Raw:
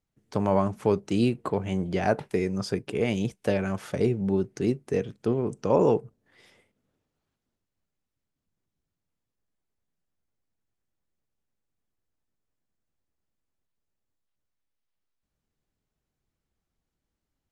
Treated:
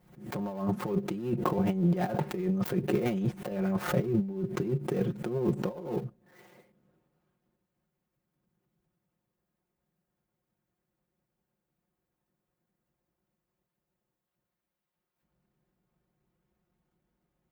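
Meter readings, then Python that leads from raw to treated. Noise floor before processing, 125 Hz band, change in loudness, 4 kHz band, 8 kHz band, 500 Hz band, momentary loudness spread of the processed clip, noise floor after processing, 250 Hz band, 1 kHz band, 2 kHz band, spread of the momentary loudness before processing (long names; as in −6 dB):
−85 dBFS, −1.0 dB, −4.0 dB, −6.5 dB, can't be measured, −7.0 dB, 8 LU, below −85 dBFS, −2.5 dB, −5.0 dB, −5.0 dB, 5 LU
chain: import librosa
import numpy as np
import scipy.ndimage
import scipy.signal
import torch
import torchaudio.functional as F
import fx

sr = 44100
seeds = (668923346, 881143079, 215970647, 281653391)

p1 = fx.dead_time(x, sr, dead_ms=0.13)
p2 = scipy.signal.sosfilt(scipy.signal.butter(2, 62.0, 'highpass', fs=sr, output='sos'), p1)
p3 = p2 + 0.88 * np.pad(p2, (int(5.6 * sr / 1000.0), 0))[:len(p2)]
p4 = 10.0 ** (-17.5 / 20.0) * np.tanh(p3 / 10.0 ** (-17.5 / 20.0))
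p5 = p3 + (p4 * librosa.db_to_amplitude(-4.5))
p6 = fx.over_compress(p5, sr, threshold_db=-24.0, ratio=-0.5)
p7 = fx.peak_eq(p6, sr, hz=6200.0, db=-12.5, octaves=2.9)
p8 = fx.pre_swell(p7, sr, db_per_s=95.0)
y = p8 * librosa.db_to_amplitude(-4.0)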